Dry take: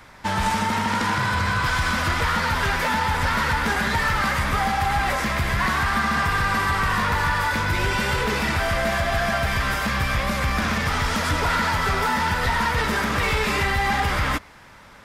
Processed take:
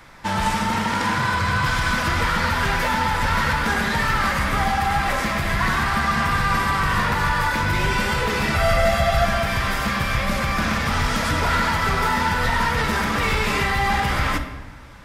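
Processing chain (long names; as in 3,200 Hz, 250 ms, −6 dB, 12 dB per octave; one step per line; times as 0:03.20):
0:08.54–0:09.25: comb filter 1.5 ms, depth 65%
rectangular room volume 710 cubic metres, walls mixed, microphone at 0.73 metres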